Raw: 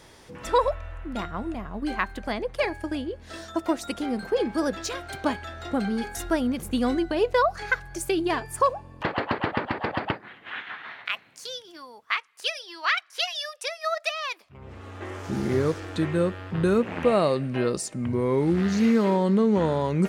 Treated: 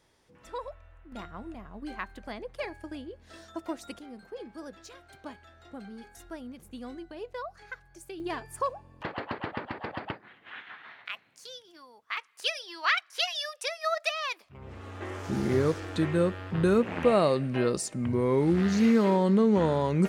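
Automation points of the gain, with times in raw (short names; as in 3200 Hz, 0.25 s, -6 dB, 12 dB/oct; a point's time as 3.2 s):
-16.5 dB
from 1.12 s -10 dB
from 3.99 s -17 dB
from 8.2 s -8.5 dB
from 12.17 s -1.5 dB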